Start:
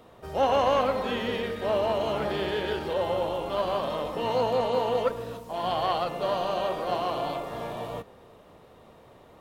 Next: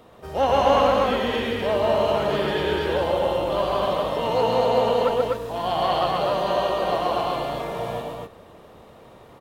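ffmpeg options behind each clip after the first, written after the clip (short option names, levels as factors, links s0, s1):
-af "aecho=1:1:131.2|247.8:0.631|0.794,volume=1.33"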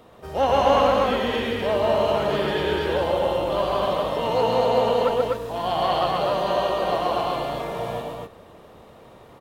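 -af anull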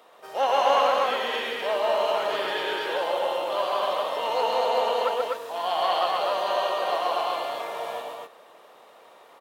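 -af "highpass=630"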